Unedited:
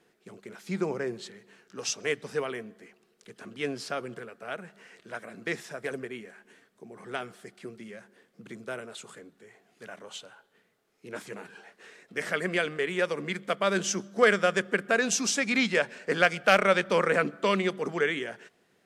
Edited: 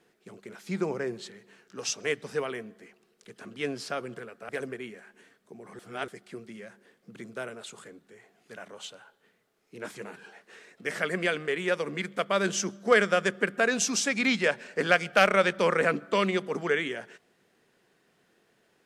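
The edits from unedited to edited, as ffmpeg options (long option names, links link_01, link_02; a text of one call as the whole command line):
ffmpeg -i in.wav -filter_complex "[0:a]asplit=4[link_01][link_02][link_03][link_04];[link_01]atrim=end=4.492[link_05];[link_02]atrim=start=5.798:end=7.102[link_06];[link_03]atrim=start=7.098:end=7.392,asetpts=PTS-STARTPTS,areverse[link_07];[link_04]atrim=start=7.388[link_08];[link_05][link_06]acrossfade=duration=0.004:curve1=hsin:curve2=hsin[link_09];[link_09][link_07]acrossfade=duration=0.004:curve1=hsin:curve2=hsin[link_10];[link_10][link_08]acrossfade=duration=0.004:curve1=hsin:curve2=hsin" out.wav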